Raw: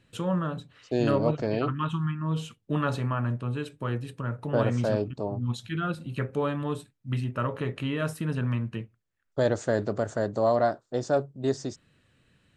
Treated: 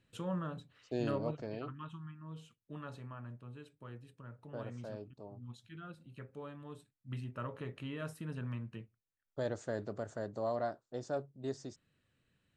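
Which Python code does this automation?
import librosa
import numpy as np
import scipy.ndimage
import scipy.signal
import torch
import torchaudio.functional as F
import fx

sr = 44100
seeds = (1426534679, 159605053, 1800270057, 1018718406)

y = fx.gain(x, sr, db=fx.line((0.99, -10.0), (2.05, -19.0), (6.65, -19.0), (7.11, -12.5)))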